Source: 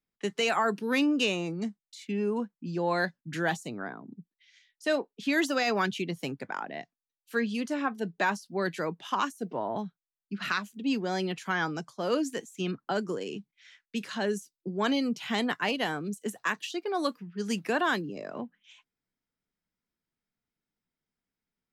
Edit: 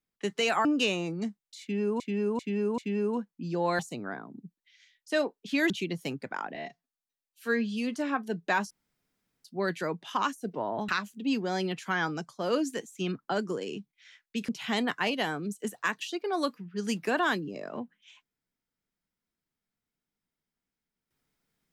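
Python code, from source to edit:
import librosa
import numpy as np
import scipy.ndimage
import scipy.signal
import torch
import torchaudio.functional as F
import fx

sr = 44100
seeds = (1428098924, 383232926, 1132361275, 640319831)

y = fx.edit(x, sr, fx.cut(start_s=0.65, length_s=0.4),
    fx.repeat(start_s=2.01, length_s=0.39, count=4),
    fx.cut(start_s=3.02, length_s=0.51),
    fx.cut(start_s=5.44, length_s=0.44),
    fx.stretch_span(start_s=6.73, length_s=0.93, factor=1.5),
    fx.insert_room_tone(at_s=8.42, length_s=0.74),
    fx.cut(start_s=9.86, length_s=0.62),
    fx.cut(start_s=14.08, length_s=1.02), tone=tone)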